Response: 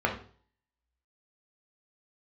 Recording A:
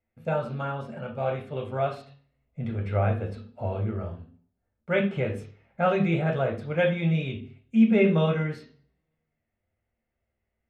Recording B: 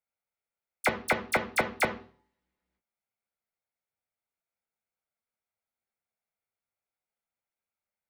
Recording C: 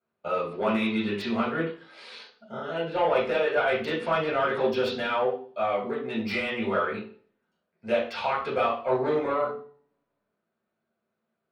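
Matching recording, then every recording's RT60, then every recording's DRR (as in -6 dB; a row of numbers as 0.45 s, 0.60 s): A; 0.45 s, 0.45 s, 0.45 s; 0.5 dB, 6.5 dB, -7.0 dB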